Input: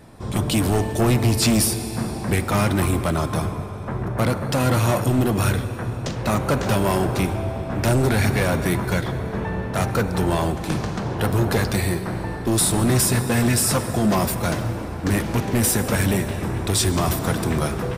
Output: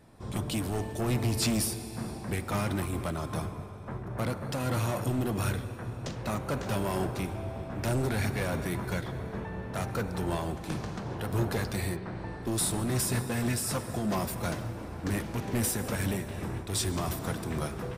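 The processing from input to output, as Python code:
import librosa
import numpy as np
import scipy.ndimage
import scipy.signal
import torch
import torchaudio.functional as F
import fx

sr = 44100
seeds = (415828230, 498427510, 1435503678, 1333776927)

y = fx.lowpass(x, sr, hz=fx.line((11.95, 3100.0), (12.41, 8300.0)), slope=12, at=(11.95, 12.41), fade=0.02)
y = fx.am_noise(y, sr, seeds[0], hz=5.7, depth_pct=60)
y = F.gain(torch.from_numpy(y), -8.0).numpy()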